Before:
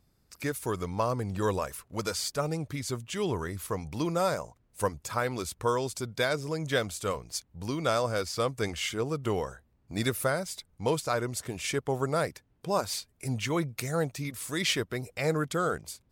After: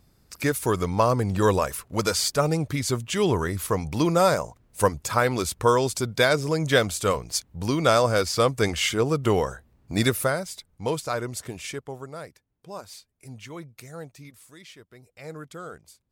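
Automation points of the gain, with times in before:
9.99 s +8 dB
10.5 s +1 dB
11.49 s +1 dB
12.09 s -10 dB
14.29 s -10 dB
14.7 s -20 dB
15.35 s -10 dB

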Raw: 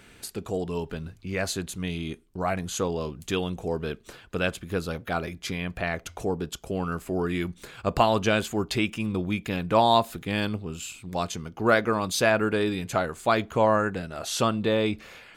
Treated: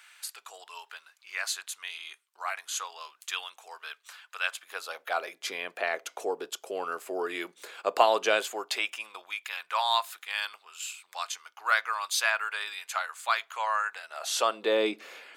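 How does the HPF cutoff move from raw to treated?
HPF 24 dB/oct
4.38 s 1000 Hz
5.52 s 420 Hz
8.34 s 420 Hz
9.43 s 1000 Hz
13.91 s 1000 Hz
14.82 s 320 Hz

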